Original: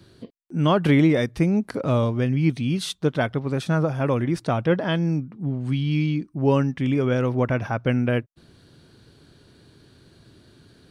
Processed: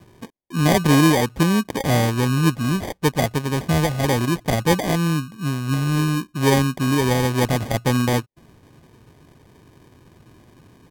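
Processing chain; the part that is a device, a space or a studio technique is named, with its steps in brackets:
crushed at another speed (tape speed factor 1.25×; decimation without filtering 26×; tape speed factor 0.8×)
level +2.5 dB

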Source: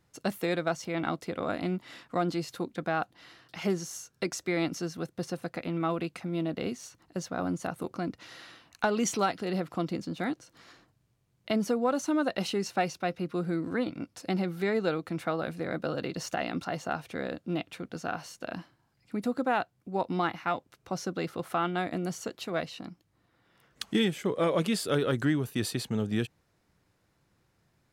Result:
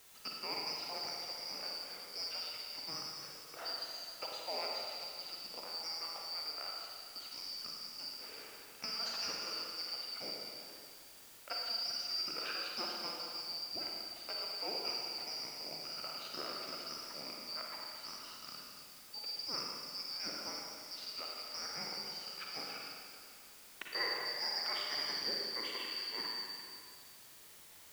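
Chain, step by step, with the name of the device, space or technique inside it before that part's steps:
split-band scrambled radio (band-splitting scrambler in four parts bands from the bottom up 2341; band-pass filter 320–2,900 Hz; white noise bed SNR 14 dB)
four-comb reverb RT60 2.3 s, DRR −2 dB
level −6 dB

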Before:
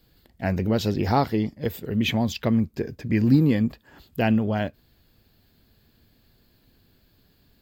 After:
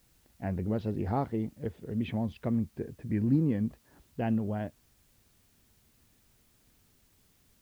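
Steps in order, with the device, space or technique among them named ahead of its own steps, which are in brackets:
cassette deck with a dirty head (head-to-tape spacing loss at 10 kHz 42 dB; tape wow and flutter; white noise bed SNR 35 dB)
level −7 dB

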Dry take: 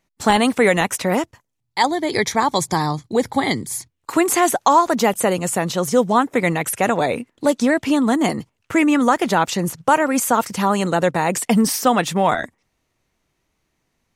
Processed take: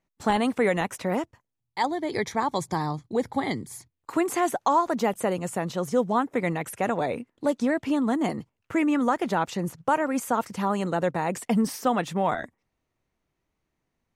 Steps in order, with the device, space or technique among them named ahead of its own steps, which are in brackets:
behind a face mask (high-shelf EQ 2,500 Hz −8 dB)
level −7 dB

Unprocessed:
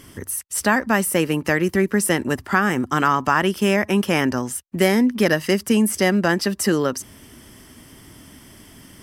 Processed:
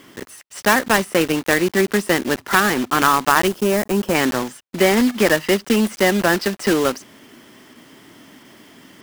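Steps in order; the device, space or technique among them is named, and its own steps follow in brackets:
early digital voice recorder (band-pass filter 230–3,800 Hz; one scale factor per block 3 bits)
0:03.47–0:04.15: parametric band 2,500 Hz −9 dB 2.1 octaves
level +3 dB

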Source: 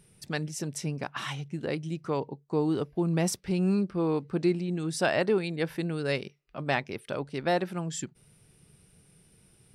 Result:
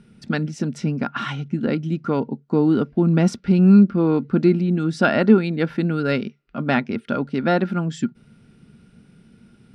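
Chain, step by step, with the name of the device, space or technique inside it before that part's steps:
inside a cardboard box (low-pass filter 4,300 Hz 12 dB per octave; hollow resonant body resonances 230/1,400 Hz, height 17 dB, ringing for 65 ms)
level +5 dB

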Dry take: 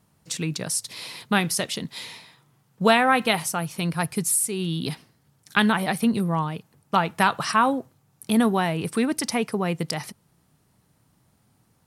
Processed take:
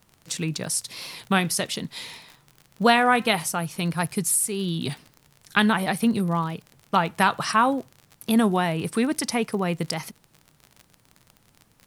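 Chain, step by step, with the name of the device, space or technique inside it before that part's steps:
warped LP (wow of a warped record 33 1/3 rpm, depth 100 cents; surface crackle 45 per second −33 dBFS; pink noise bed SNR 41 dB)

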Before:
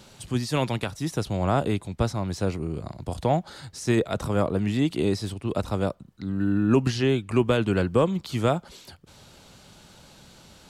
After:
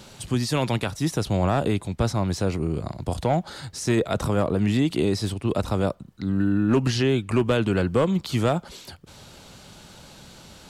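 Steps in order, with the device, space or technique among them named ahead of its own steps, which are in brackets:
clipper into limiter (hard clipping −13.5 dBFS, distortion −22 dB; brickwall limiter −17.5 dBFS, peak gain reduction 4 dB)
level +4.5 dB

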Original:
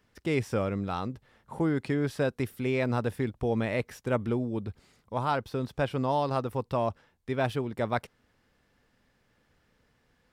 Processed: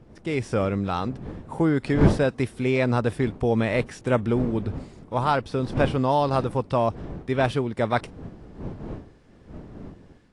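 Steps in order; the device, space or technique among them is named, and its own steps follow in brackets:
smartphone video outdoors (wind on the microphone 280 Hz −39 dBFS; automatic gain control gain up to 6 dB; AAC 48 kbit/s 22,050 Hz)

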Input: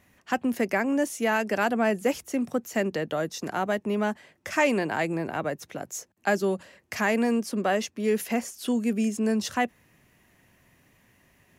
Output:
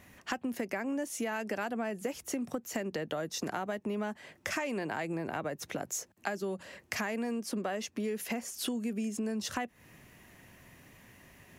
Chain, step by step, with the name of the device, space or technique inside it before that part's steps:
serial compression, peaks first (downward compressor 4 to 1, threshold −33 dBFS, peak gain reduction 13 dB; downward compressor 2 to 1, threshold −40 dBFS, peak gain reduction 6.5 dB)
level +5 dB

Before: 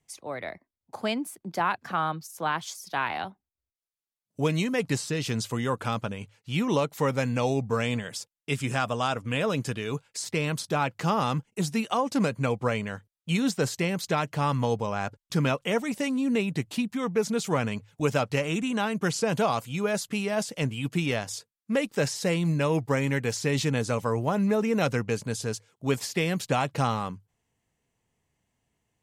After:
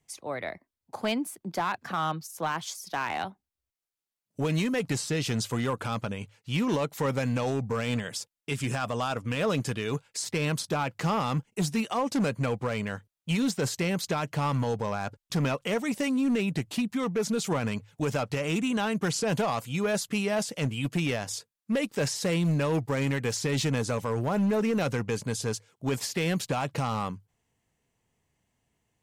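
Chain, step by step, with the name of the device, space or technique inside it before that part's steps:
limiter into clipper (brickwall limiter −18.5 dBFS, peak gain reduction 6.5 dB; hard clipping −22.5 dBFS, distortion −18 dB)
level +1 dB

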